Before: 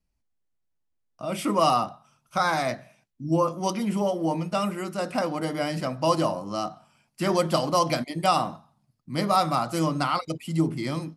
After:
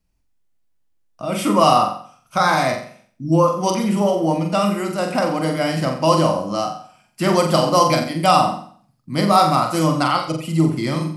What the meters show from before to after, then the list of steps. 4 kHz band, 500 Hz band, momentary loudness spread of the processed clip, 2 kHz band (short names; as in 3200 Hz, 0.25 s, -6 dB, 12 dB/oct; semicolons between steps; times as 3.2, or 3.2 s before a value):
+7.5 dB, +7.5 dB, 11 LU, +7.5 dB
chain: flutter echo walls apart 7.6 m, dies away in 0.49 s; gain +6 dB